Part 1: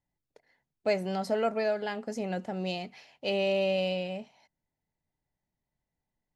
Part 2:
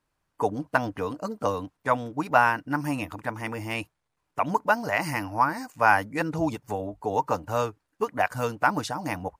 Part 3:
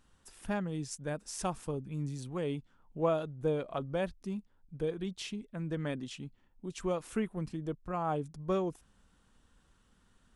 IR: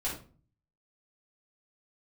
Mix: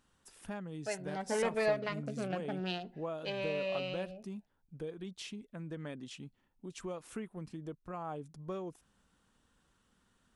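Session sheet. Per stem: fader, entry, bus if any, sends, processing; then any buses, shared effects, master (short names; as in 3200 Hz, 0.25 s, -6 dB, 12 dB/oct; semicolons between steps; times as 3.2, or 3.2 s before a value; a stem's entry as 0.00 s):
0.87 s -16.5 dB -> 1.36 s -6 dB -> 3 s -6 dB -> 3.36 s -13.5 dB, 0.00 s, send -21 dB, Wiener smoothing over 41 samples; bell 1600 Hz +13 dB 3 oct; cascading phaser rising 0.54 Hz
off
-2.5 dB, 0.00 s, no send, low shelf 62 Hz -11.5 dB; compressor 2:1, threshold -39 dBFS, peak gain reduction 8.5 dB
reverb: on, RT60 0.40 s, pre-delay 4 ms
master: dry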